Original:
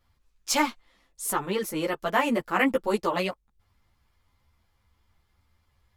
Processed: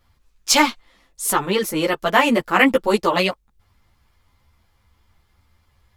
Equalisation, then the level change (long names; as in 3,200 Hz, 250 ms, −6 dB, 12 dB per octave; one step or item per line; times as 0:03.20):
dynamic equaliser 3,800 Hz, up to +5 dB, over −40 dBFS, Q 0.9
+7.5 dB